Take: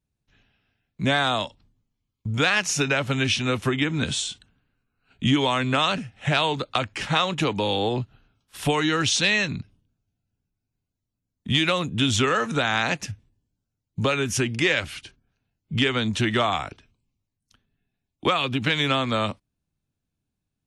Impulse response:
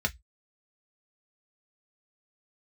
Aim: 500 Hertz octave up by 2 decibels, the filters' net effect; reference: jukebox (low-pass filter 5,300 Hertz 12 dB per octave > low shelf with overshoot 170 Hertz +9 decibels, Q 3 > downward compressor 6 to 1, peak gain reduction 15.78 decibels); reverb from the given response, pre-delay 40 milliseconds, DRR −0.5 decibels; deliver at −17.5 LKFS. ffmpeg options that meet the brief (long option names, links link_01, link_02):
-filter_complex "[0:a]equalizer=frequency=500:width_type=o:gain=4,asplit=2[link_01][link_02];[1:a]atrim=start_sample=2205,adelay=40[link_03];[link_02][link_03]afir=irnorm=-1:irlink=0,volume=-7.5dB[link_04];[link_01][link_04]amix=inputs=2:normalize=0,lowpass=5300,lowshelf=frequency=170:width_type=q:width=3:gain=9,acompressor=threshold=-17dB:ratio=6,volume=4dB"